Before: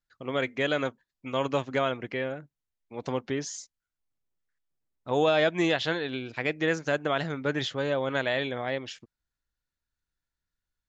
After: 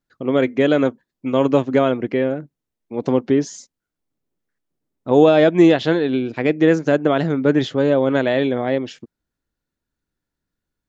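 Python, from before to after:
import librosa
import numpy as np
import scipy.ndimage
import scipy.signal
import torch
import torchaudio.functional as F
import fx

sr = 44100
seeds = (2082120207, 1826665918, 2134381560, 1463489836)

y = fx.peak_eq(x, sr, hz=280.0, db=14.0, octaves=2.6)
y = F.gain(torch.from_numpy(y), 2.0).numpy()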